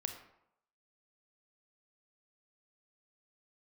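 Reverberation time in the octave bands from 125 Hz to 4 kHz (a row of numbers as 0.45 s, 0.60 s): 0.70 s, 0.70 s, 0.80 s, 0.80 s, 0.60 s, 0.45 s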